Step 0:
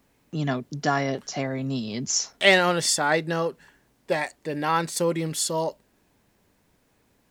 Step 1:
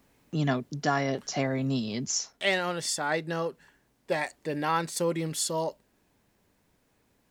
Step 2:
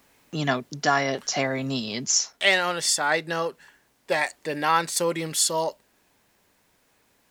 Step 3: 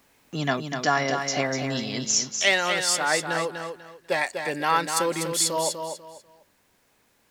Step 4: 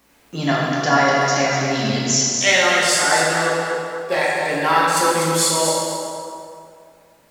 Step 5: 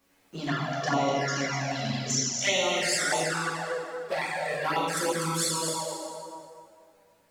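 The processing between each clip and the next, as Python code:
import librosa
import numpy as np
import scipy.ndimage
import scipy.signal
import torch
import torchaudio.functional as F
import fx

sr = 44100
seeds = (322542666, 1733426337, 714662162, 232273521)

y1 = fx.rider(x, sr, range_db=5, speed_s=0.5)
y1 = y1 * librosa.db_to_amplitude(-4.5)
y2 = fx.low_shelf(y1, sr, hz=450.0, db=-11.0)
y2 = y2 * librosa.db_to_amplitude(8.0)
y3 = fx.echo_feedback(y2, sr, ms=246, feedback_pct=26, wet_db=-6.5)
y3 = y3 * librosa.db_to_amplitude(-1.0)
y4 = fx.rev_plate(y3, sr, seeds[0], rt60_s=2.3, hf_ratio=0.65, predelay_ms=0, drr_db=-5.5)
y4 = y4 * librosa.db_to_amplitude(1.0)
y5 = fx.env_flanger(y4, sr, rest_ms=11.0, full_db=-12.0)
y5 = y5 * librosa.db_to_amplitude(-7.0)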